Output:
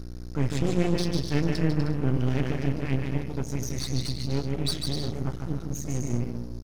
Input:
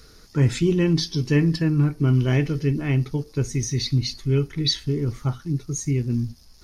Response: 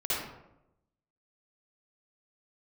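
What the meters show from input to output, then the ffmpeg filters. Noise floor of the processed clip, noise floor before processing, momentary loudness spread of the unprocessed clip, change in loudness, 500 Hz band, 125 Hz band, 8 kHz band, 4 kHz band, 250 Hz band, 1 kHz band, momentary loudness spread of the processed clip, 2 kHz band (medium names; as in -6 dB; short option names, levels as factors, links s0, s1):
-37 dBFS, -50 dBFS, 7 LU, -6.0 dB, -4.5 dB, -6.5 dB, -5.5 dB, -6.0 dB, -5.0 dB, +1.0 dB, 6 LU, -5.0 dB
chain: -af "aecho=1:1:150|247.5|310.9|352.1|378.8:0.631|0.398|0.251|0.158|0.1,aeval=exprs='val(0)+0.0355*(sin(2*PI*60*n/s)+sin(2*PI*2*60*n/s)/2+sin(2*PI*3*60*n/s)/3+sin(2*PI*4*60*n/s)/4+sin(2*PI*5*60*n/s)/5)':c=same,aeval=exprs='max(val(0),0)':c=same,volume=0.631"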